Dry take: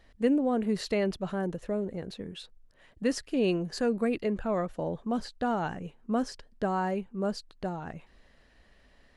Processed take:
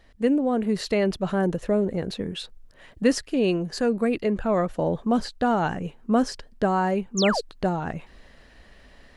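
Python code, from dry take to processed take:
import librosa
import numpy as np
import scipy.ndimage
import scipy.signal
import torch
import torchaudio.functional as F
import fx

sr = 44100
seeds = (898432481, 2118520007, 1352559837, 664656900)

y = fx.rider(x, sr, range_db=3, speed_s=0.5)
y = fx.spec_paint(y, sr, seeds[0], shape='fall', start_s=7.17, length_s=0.24, low_hz=400.0, high_hz=7500.0, level_db=-33.0)
y = y * librosa.db_to_amplitude(6.5)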